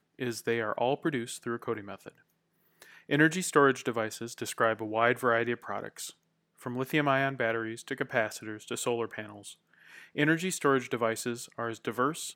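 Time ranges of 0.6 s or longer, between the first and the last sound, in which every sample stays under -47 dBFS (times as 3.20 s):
2.09–2.82 s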